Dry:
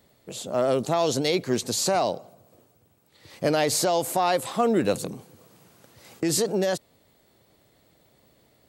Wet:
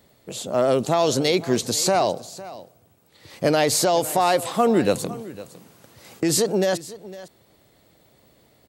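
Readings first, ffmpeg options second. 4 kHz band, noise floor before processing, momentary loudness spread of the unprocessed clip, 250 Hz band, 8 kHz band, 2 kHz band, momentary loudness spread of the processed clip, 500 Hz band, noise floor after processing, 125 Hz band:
+3.5 dB, -63 dBFS, 10 LU, +3.5 dB, +3.5 dB, +3.5 dB, 18 LU, +3.5 dB, -59 dBFS, +3.5 dB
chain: -af "aecho=1:1:506:0.133,volume=1.5"

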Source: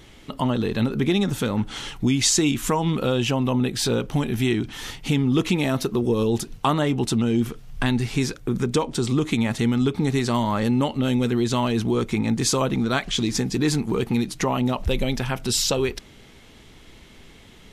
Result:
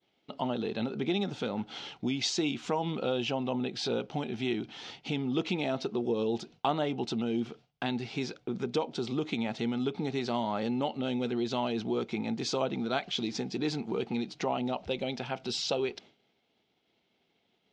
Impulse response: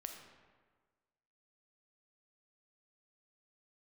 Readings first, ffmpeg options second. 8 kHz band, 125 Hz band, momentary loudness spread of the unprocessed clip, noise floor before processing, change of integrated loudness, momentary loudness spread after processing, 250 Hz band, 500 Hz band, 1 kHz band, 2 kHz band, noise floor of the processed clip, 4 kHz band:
-17.5 dB, -15.5 dB, 5 LU, -48 dBFS, -9.5 dB, 5 LU, -10.0 dB, -7.0 dB, -7.0 dB, -9.5 dB, -75 dBFS, -8.0 dB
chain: -af "highpass=210,equalizer=f=280:t=q:w=4:g=-3,equalizer=f=730:t=q:w=4:g=6,equalizer=f=1100:t=q:w=4:g=-6,equalizer=f=1800:t=q:w=4:g=-7,lowpass=f=5100:w=0.5412,lowpass=f=5100:w=1.3066,agate=range=0.0224:threshold=0.00891:ratio=3:detection=peak,volume=0.447"

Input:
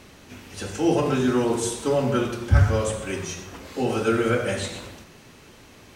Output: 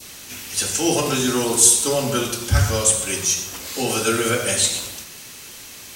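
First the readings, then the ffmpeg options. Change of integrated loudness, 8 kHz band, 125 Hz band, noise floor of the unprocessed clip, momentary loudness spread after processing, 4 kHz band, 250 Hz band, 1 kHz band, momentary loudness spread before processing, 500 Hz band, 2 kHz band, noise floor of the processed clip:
+5.0 dB, +18.5 dB, -1.0 dB, -49 dBFS, 22 LU, +12.0 dB, -0.5 dB, +2.5 dB, 15 LU, 0.0 dB, +4.5 dB, -39 dBFS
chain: -af "crystalizer=i=9:c=0,adynamicequalizer=threshold=0.0141:dfrequency=1800:dqfactor=1.2:tfrequency=1800:tqfactor=1.2:attack=5:release=100:ratio=0.375:range=2.5:mode=cutabove:tftype=bell,volume=0.891"

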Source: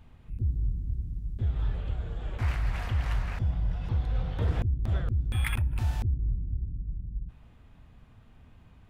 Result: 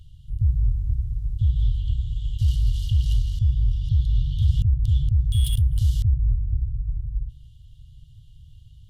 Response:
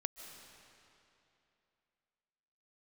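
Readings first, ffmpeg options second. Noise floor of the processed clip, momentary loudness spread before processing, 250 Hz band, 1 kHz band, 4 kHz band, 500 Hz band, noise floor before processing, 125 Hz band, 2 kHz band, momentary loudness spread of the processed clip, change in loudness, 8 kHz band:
-48 dBFS, 8 LU, no reading, under -25 dB, +8.0 dB, under -25 dB, -55 dBFS, +8.0 dB, under -15 dB, 8 LU, +7.5 dB, +8.0 dB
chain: -af "afftfilt=real='re*(1-between(b*sr/4096,160,2800))':imag='im*(1-between(b*sr/4096,160,2800))':win_size=4096:overlap=0.75,volume=2.51" -ar 32000 -c:a sbc -b:a 128k

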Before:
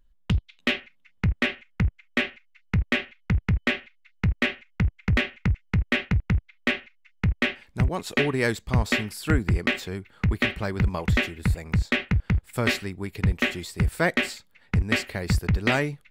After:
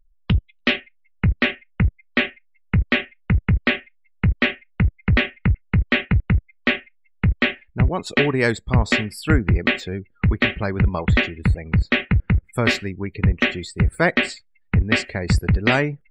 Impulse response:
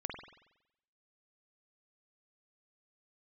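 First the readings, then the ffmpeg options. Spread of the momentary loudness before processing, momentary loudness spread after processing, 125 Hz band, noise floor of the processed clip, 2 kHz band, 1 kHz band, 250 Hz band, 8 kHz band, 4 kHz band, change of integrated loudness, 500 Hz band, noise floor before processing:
5 LU, 5 LU, +5.0 dB, -59 dBFS, +5.0 dB, +5.0 dB, +5.0 dB, +0.5 dB, +4.5 dB, +5.0 dB, +5.0 dB, -61 dBFS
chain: -af "afftdn=nr=36:nf=-41,volume=1.78"

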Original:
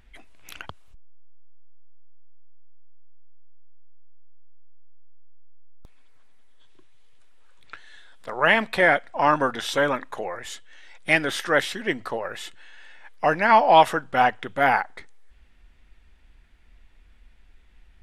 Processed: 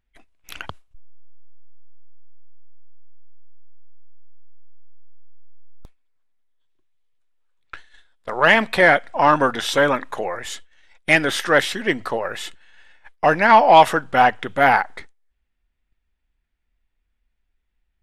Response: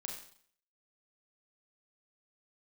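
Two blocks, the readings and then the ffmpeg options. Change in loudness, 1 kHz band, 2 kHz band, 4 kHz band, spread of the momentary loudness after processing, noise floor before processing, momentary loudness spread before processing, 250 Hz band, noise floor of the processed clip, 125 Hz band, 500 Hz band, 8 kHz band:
+4.5 dB, +4.5 dB, +4.5 dB, +4.5 dB, 19 LU, -54 dBFS, 20 LU, +5.0 dB, -73 dBFS, +5.0 dB, +4.5 dB, +5.0 dB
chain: -af "acontrast=30,agate=range=0.0631:threshold=0.0158:ratio=16:detection=peak"

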